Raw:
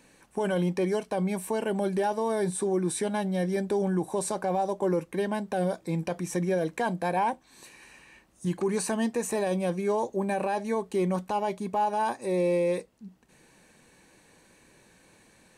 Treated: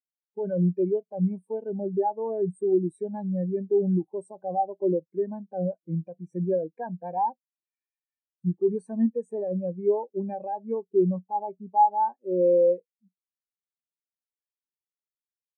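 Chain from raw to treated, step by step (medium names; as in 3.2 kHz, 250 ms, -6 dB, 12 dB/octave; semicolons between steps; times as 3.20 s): spectral contrast expander 2.5:1; trim +5.5 dB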